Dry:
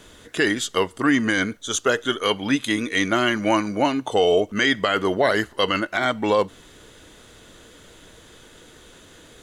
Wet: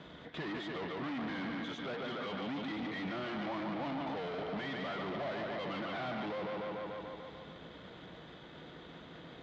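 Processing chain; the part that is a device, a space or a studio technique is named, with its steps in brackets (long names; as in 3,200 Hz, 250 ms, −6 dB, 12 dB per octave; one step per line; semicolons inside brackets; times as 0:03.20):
analogue delay pedal into a guitar amplifier (bucket-brigade delay 146 ms, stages 4,096, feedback 63%, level −8.5 dB; tube saturation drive 37 dB, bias 0.5; loudspeaker in its box 82–3,500 Hz, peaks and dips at 100 Hz −8 dB, 160 Hz +9 dB, 420 Hz −4 dB, 720 Hz +4 dB, 1,600 Hz −4 dB, 2,700 Hz −6 dB)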